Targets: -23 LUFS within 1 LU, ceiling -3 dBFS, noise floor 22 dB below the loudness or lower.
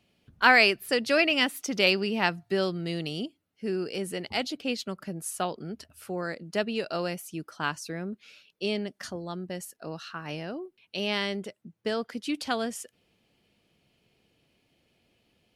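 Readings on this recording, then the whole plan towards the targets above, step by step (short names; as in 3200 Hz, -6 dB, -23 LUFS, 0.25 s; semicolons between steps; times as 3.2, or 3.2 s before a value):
loudness -28.5 LUFS; peak -6.5 dBFS; loudness target -23.0 LUFS
-> gain +5.5 dB; limiter -3 dBFS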